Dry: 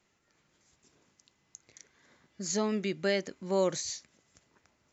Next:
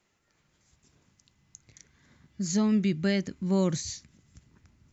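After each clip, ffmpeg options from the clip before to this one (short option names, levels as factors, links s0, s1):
-af "asubboost=boost=10.5:cutoff=180"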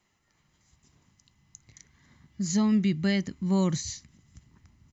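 -af "aecho=1:1:1:0.37"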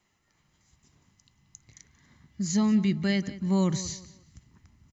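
-filter_complex "[0:a]asplit=2[s0][s1];[s1]adelay=181,lowpass=f=4800:p=1,volume=0.168,asplit=2[s2][s3];[s3]adelay=181,lowpass=f=4800:p=1,volume=0.31,asplit=2[s4][s5];[s5]adelay=181,lowpass=f=4800:p=1,volume=0.31[s6];[s0][s2][s4][s6]amix=inputs=4:normalize=0"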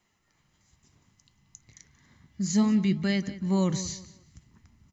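-af "flanger=delay=4.2:depth=6.6:regen=84:speed=0.64:shape=sinusoidal,volume=1.68"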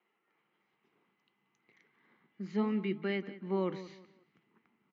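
-af "highpass=f=260:w=0.5412,highpass=f=260:w=1.3066,equalizer=f=270:t=q:w=4:g=-9,equalizer=f=430:t=q:w=4:g=3,equalizer=f=620:t=q:w=4:g=-8,equalizer=f=1000:t=q:w=4:g=-5,equalizer=f=1800:t=q:w=4:g=-7,lowpass=f=2500:w=0.5412,lowpass=f=2500:w=1.3066"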